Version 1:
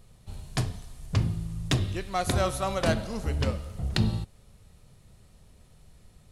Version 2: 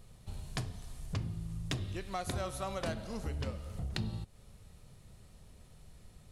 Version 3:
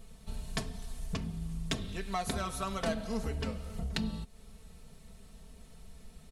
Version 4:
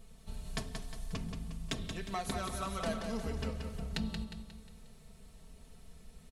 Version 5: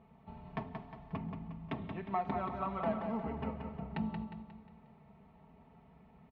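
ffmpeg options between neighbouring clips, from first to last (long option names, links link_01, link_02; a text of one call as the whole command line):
ffmpeg -i in.wav -af "acompressor=threshold=-37dB:ratio=2.5,volume=-1dB" out.wav
ffmpeg -i in.wav -af "aecho=1:1:4.5:0.82,volume=1.5dB" out.wav
ffmpeg -i in.wav -af "aecho=1:1:179|358|537|716|895:0.501|0.226|0.101|0.0457|0.0206,volume=-3.5dB" out.wav
ffmpeg -i in.wav -af "highpass=120,equalizer=frequency=480:width_type=q:width=4:gain=-6,equalizer=frequency=860:width_type=q:width=4:gain=9,equalizer=frequency=1600:width_type=q:width=4:gain=-9,lowpass=frequency=2100:width=0.5412,lowpass=frequency=2100:width=1.3066,volume=2dB" out.wav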